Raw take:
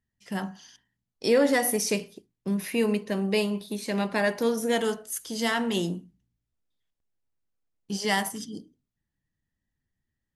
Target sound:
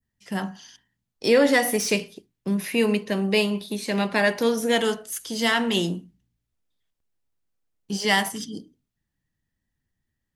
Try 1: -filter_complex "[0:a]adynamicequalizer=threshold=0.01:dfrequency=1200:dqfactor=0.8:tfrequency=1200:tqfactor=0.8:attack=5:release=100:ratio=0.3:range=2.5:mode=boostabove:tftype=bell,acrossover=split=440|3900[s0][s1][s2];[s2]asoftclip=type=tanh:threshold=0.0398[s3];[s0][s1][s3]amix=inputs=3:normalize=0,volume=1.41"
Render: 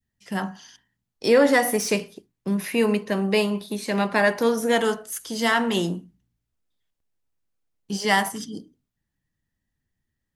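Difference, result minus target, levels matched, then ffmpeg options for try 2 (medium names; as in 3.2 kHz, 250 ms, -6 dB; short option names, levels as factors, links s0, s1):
4 kHz band -3.5 dB
-filter_complex "[0:a]adynamicequalizer=threshold=0.01:dfrequency=3000:dqfactor=0.8:tfrequency=3000:tqfactor=0.8:attack=5:release=100:ratio=0.3:range=2.5:mode=boostabove:tftype=bell,acrossover=split=440|3900[s0][s1][s2];[s2]asoftclip=type=tanh:threshold=0.0398[s3];[s0][s1][s3]amix=inputs=3:normalize=0,volume=1.41"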